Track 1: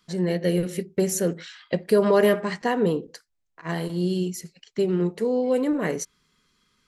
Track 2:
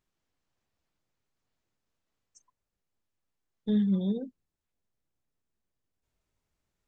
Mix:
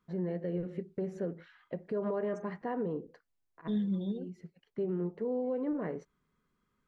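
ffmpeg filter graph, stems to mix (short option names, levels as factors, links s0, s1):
-filter_complex "[0:a]lowpass=1300,alimiter=limit=0.112:level=0:latency=1:release=199,volume=0.447[s0];[1:a]volume=0.501,asplit=2[s1][s2];[s2]apad=whole_len=303103[s3];[s0][s3]sidechaincompress=threshold=0.00398:ratio=8:attack=16:release=140[s4];[s4][s1]amix=inputs=2:normalize=0"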